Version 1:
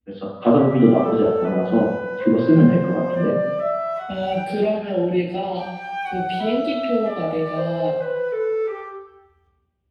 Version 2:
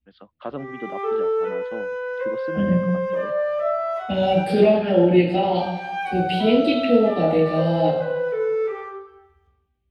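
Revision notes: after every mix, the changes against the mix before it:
first voice: send off; second voice +5.0 dB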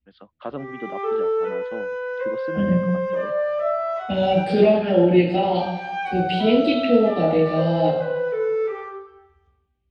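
master: add low-pass 7.5 kHz 24 dB/octave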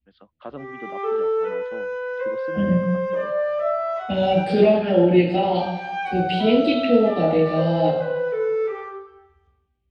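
first voice -4.5 dB

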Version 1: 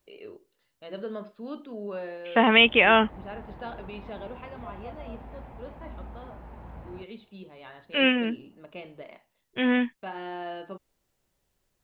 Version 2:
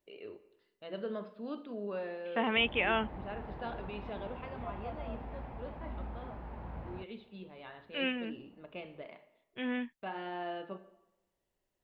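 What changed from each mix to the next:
first voice -5.0 dB; second voice -12.0 dB; reverb: on, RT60 0.95 s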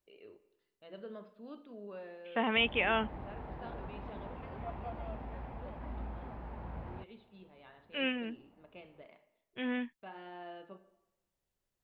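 first voice -8.0 dB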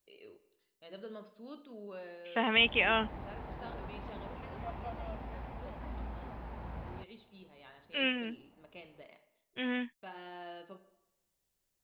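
master: add treble shelf 3.3 kHz +10 dB

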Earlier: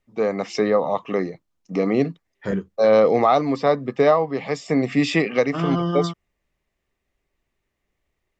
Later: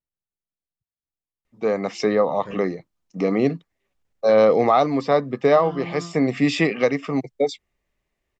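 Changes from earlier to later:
first voice: entry +1.45 s; second voice -11.0 dB

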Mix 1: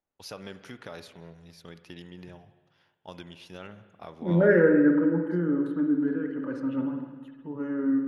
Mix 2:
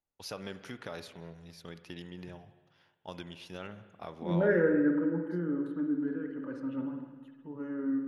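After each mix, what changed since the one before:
second voice -6.5 dB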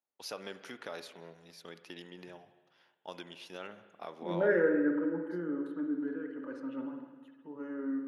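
master: add high-pass 290 Hz 12 dB/octave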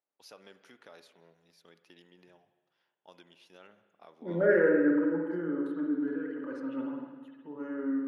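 first voice -10.5 dB; second voice: send +6.0 dB

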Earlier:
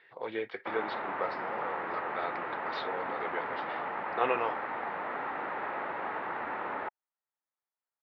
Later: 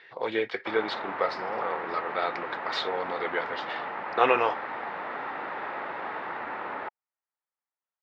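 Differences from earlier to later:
speech +6.5 dB; master: remove distance through air 180 m

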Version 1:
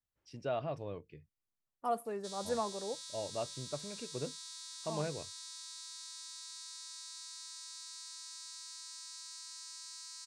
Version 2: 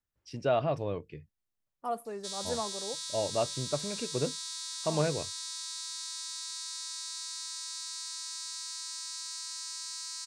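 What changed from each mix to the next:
first voice +8.5 dB; background +8.5 dB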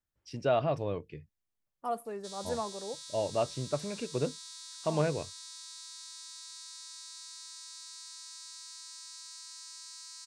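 background -7.5 dB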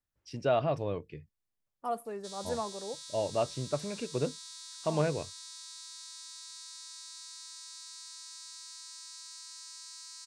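no change

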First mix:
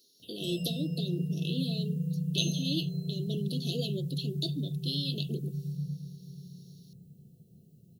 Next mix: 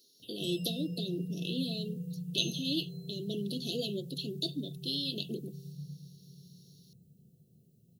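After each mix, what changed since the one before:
background: send -8.5 dB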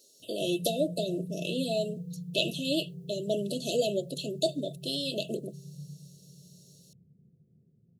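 speech: remove static phaser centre 2.3 kHz, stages 6; background: add Gaussian low-pass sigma 9.5 samples

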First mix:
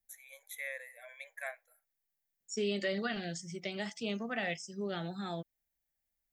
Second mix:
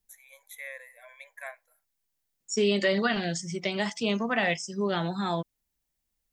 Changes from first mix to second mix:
second voice +9.0 dB; master: add peaking EQ 1 kHz +12.5 dB 0.24 oct

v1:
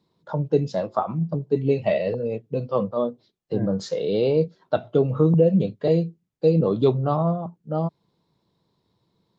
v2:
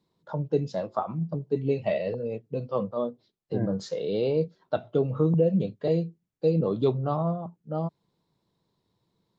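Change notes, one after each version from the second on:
first voice -5.0 dB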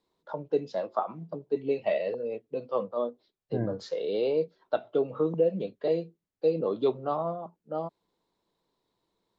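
first voice: add three-band isolator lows -20 dB, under 260 Hz, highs -15 dB, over 5.5 kHz

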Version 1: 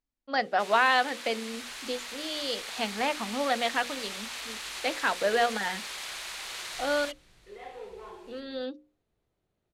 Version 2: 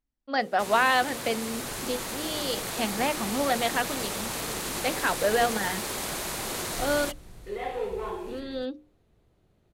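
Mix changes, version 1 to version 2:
first sound: remove band-pass filter 2.9 kHz, Q 0.86; second sound +9.5 dB; master: add bass shelf 330 Hz +6.5 dB

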